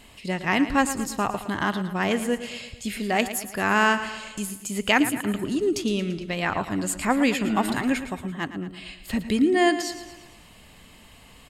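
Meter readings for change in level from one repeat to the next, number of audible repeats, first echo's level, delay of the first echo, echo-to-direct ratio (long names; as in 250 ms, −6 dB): −5.5 dB, 5, −12.0 dB, 113 ms, −10.5 dB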